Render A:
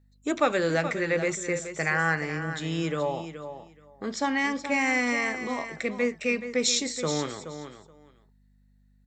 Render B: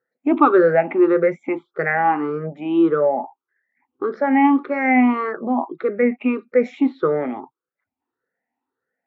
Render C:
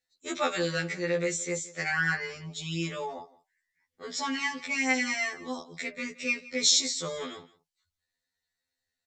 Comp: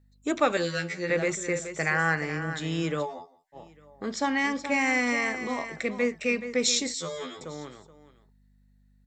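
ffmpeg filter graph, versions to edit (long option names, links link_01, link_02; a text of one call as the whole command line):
ffmpeg -i take0.wav -i take1.wav -i take2.wav -filter_complex "[2:a]asplit=3[link_01][link_02][link_03];[0:a]asplit=4[link_04][link_05][link_06][link_07];[link_04]atrim=end=0.572[link_08];[link_01]atrim=start=0.568:end=1.102[link_09];[link_05]atrim=start=1.098:end=3.07[link_10];[link_02]atrim=start=3.01:end=3.58[link_11];[link_06]atrim=start=3.52:end=6.942[link_12];[link_03]atrim=start=6.938:end=7.412[link_13];[link_07]atrim=start=7.408[link_14];[link_08][link_09]acrossfade=duration=0.004:curve1=hsin:curve2=hsin[link_15];[link_15][link_10]acrossfade=duration=0.004:curve1=hsin:curve2=hsin[link_16];[link_16][link_11]acrossfade=duration=0.06:curve1=tri:curve2=tri[link_17];[link_17][link_12]acrossfade=duration=0.06:curve1=tri:curve2=tri[link_18];[link_18][link_13]acrossfade=duration=0.004:curve1=hsin:curve2=hsin[link_19];[link_19][link_14]acrossfade=duration=0.004:curve1=hsin:curve2=hsin" out.wav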